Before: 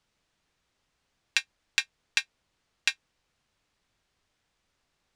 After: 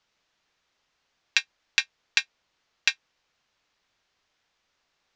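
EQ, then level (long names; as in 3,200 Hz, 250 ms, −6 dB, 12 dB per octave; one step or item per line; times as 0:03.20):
Butterworth low-pass 6,800 Hz
low-shelf EQ 300 Hz −12 dB
+3.5 dB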